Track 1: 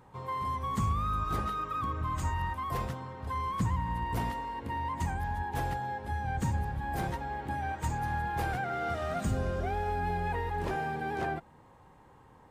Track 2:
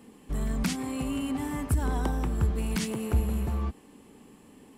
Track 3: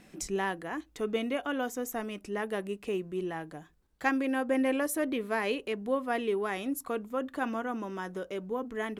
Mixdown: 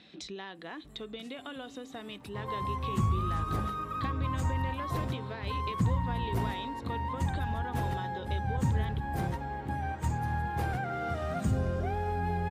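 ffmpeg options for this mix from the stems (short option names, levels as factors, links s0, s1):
-filter_complex "[0:a]lowshelf=f=280:g=8,acontrast=69,adelay=2200,volume=0.355[s0];[1:a]acompressor=threshold=0.0158:ratio=5,adelay=550,volume=0.266[s1];[2:a]lowpass=f=3800:t=q:w=9.3,acompressor=threshold=0.0282:ratio=6,volume=0.708[s2];[s1][s2]amix=inputs=2:normalize=0,acompressor=threshold=0.0112:ratio=3,volume=1[s3];[s0][s3]amix=inputs=2:normalize=0,highpass=73"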